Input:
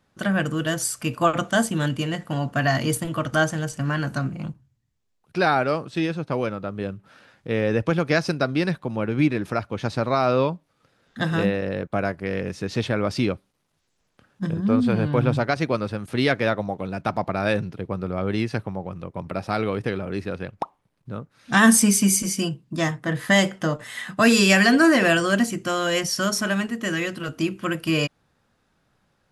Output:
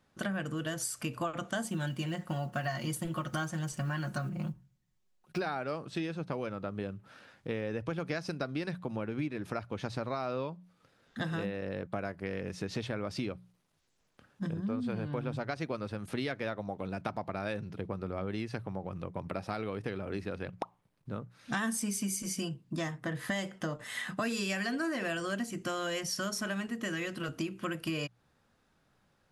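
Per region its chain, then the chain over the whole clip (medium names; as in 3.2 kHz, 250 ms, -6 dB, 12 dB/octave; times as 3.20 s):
1.64–5.42 s: block-companded coder 7-bit + comb 5.5 ms, depth 69%
whole clip: hum notches 60/120/180 Hz; compression 5:1, threshold -29 dBFS; trim -3.5 dB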